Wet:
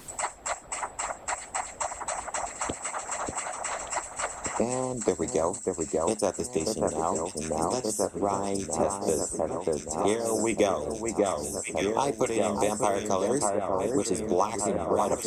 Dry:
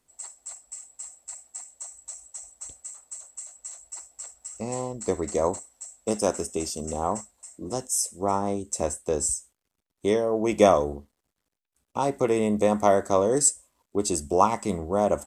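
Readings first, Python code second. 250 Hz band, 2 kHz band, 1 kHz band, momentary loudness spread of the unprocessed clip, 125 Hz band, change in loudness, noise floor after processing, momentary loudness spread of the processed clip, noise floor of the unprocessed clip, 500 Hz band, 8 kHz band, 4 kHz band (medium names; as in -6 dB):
-1.5 dB, +4.0 dB, -1.0 dB, 19 LU, -2.5 dB, -3.5 dB, -45 dBFS, 6 LU, -82 dBFS, -1.5 dB, -2.0 dB, +1.0 dB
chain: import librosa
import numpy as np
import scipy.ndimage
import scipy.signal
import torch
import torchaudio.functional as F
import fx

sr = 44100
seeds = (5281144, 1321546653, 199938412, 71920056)

y = fx.echo_alternate(x, sr, ms=589, hz=1900.0, feedback_pct=83, wet_db=-5)
y = fx.vibrato(y, sr, rate_hz=1.5, depth_cents=24.0)
y = fx.hpss(y, sr, part='harmonic', gain_db=-9)
y = fx.band_squash(y, sr, depth_pct=100)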